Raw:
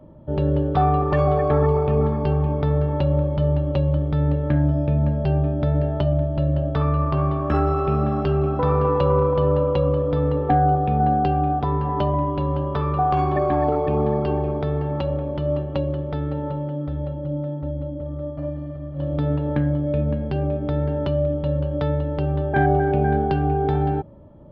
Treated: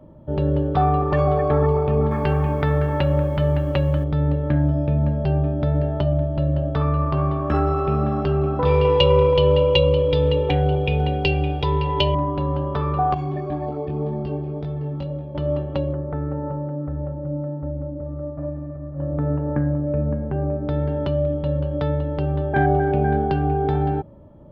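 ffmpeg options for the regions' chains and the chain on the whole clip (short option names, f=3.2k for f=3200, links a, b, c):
-filter_complex "[0:a]asettb=1/sr,asplit=3[a][b][c];[a]atrim=end=2.114[d];[b]atrim=start=2.11:end=4.04,asetpts=PTS-STARTPTS,afade=t=in:d=0.004:c=qsin,afade=t=out:st=1.926:d=0.004:c=qsin,equalizer=f=1.9k:t=o:w=1.4:g=12.5,acrusher=bits=8:mix=0:aa=0.5[e];[c]atrim=start=4.036[f];[d][e]acrossfade=d=0.004:c1=hsin:c2=qsin[g];[g][f]acrossfade=d=0.004:c1=qsin:c2=hsin,asettb=1/sr,asplit=3[h][i][j];[h]atrim=end=8.654[k];[i]atrim=start=8.65:end=12.15,asetpts=PTS-STARTPTS,afade=t=in:d=0.004:c=qsin,afade=t=out:st=3.496:d=0.004:c=qsin,highshelf=f=2k:t=q:w=3:g=10.5,aecho=1:1:2.1:0.75,atrim=end_sample=154350[l];[j]atrim=start=12.146[m];[k][l]acrossfade=d=0.004:c1=hsin:c2=qsin[n];[n][m]acrossfade=d=0.004:c1=qsin:c2=hsin,asettb=1/sr,asplit=3[o][p][q];[o]atrim=end=13.144[r];[p]atrim=start=13.14:end=15.35,asetpts=PTS-STARTPTS,afade=t=in:d=0.004:c=qsin,afade=t=out:st=2.206:d=0.004:c=qsin,equalizer=f=1.3k:t=o:w=2.2:g=-9.5,flanger=delay=19:depth=2.3:speed=1.9[s];[q]atrim=start=15.346[t];[r][s]acrossfade=d=0.004:c1=hsin:c2=qsin[u];[u][t]acrossfade=d=0.004:c1=qsin:c2=hsin,asettb=1/sr,asplit=3[v][w][x];[v]atrim=end=15.934[y];[w]atrim=start=15.93:end=20.69,asetpts=PTS-STARTPTS,afade=t=in:d=0.004:c=qsin,afade=t=out:st=4.756:d=0.004:c=qsin,lowpass=f=1.7k:w=0.5412,lowpass=f=1.7k:w=1.3066,aemphasis=mode=production:type=50fm[z];[x]atrim=start=20.686[aa];[y][z]acrossfade=d=0.004:c1=hsin:c2=qsin[ab];[ab][aa]acrossfade=d=0.004:c1=qsin:c2=hsin"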